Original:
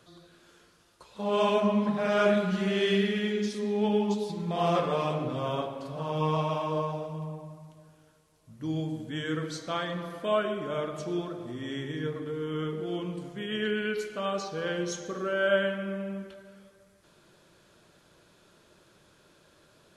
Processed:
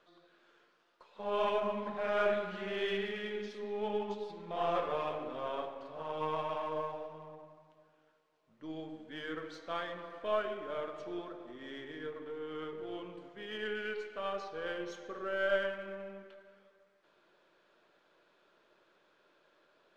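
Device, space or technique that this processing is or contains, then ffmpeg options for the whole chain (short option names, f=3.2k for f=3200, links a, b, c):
crystal radio: -af "highpass=390,lowpass=3k,aeval=exprs='if(lt(val(0),0),0.708*val(0),val(0))':c=same,volume=-4dB"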